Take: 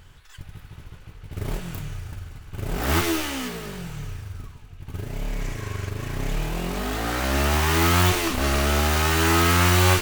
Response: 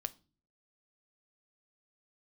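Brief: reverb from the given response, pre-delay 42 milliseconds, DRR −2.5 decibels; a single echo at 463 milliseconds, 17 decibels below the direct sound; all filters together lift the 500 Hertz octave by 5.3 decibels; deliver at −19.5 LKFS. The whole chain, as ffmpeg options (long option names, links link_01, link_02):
-filter_complex "[0:a]equalizer=frequency=500:width_type=o:gain=7.5,aecho=1:1:463:0.141,asplit=2[link_01][link_02];[1:a]atrim=start_sample=2205,adelay=42[link_03];[link_02][link_03]afir=irnorm=-1:irlink=0,volume=4dB[link_04];[link_01][link_04]amix=inputs=2:normalize=0,volume=-2.5dB"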